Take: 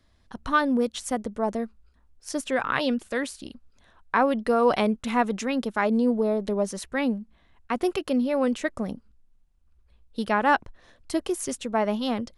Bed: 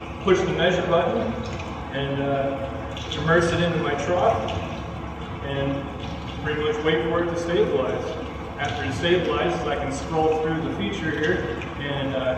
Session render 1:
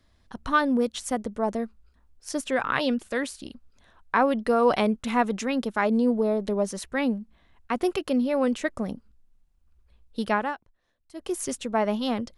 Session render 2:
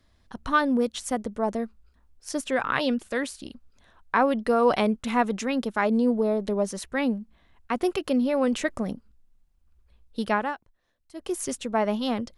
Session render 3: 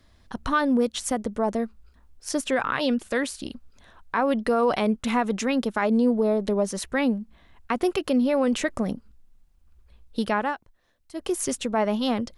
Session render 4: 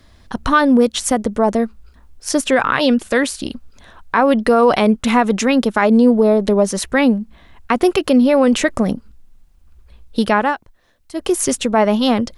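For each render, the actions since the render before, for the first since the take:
0:10.33–0:11.36: duck −19 dB, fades 0.22 s
0:08.02–0:08.93: transient designer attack +1 dB, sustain +5 dB
in parallel at −1 dB: downward compressor, threshold −32 dBFS, peak gain reduction 15.5 dB; on the sum: brickwall limiter −13 dBFS, peak gain reduction 6.5 dB
level +9.5 dB

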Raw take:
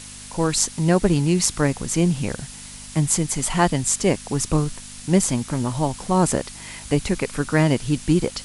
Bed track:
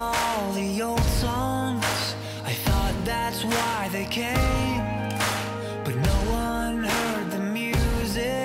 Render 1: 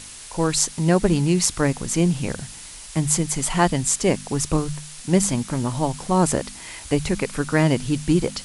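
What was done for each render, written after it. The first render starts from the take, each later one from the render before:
hum removal 50 Hz, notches 5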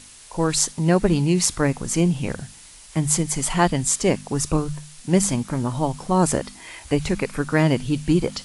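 noise reduction from a noise print 6 dB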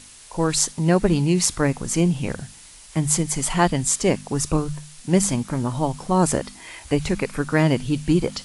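no processing that can be heard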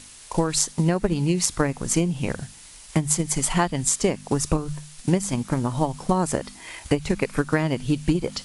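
transient designer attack +8 dB, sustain −1 dB
downward compressor 4 to 1, threshold −18 dBFS, peak gain reduction 10.5 dB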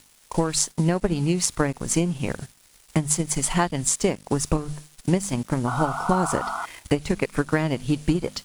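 0:05.67–0:06.66: sound drawn into the spectrogram noise 660–1,500 Hz −28 dBFS
dead-zone distortion −43.5 dBFS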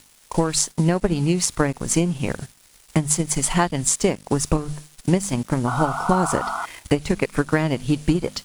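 level +2.5 dB
brickwall limiter −2 dBFS, peak gain reduction 2 dB

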